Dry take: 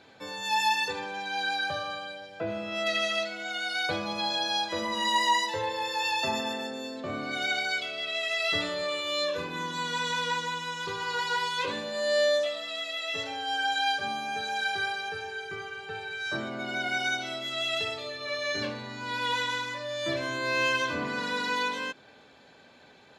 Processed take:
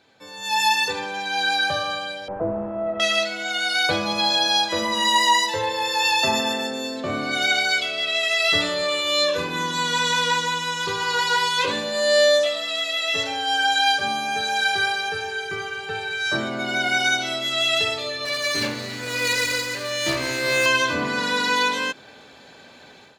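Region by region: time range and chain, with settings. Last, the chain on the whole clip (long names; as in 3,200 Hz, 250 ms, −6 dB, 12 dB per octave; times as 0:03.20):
0:02.28–0:03.00: linear delta modulator 64 kbit/s, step −29 dBFS + low-pass filter 1,000 Hz 24 dB per octave
0:18.25–0:20.66: lower of the sound and its delayed copy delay 0.46 ms + high-pass filter 85 Hz + delay that swaps between a low-pass and a high-pass 143 ms, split 1,200 Hz, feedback 77%, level −13 dB
whole clip: high-shelf EQ 4,700 Hz +6.5 dB; automatic gain control gain up to 13 dB; level −5 dB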